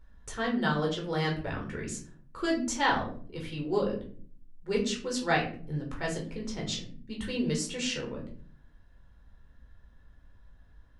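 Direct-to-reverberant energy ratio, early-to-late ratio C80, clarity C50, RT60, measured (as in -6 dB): -1.5 dB, 13.0 dB, 9.0 dB, 0.50 s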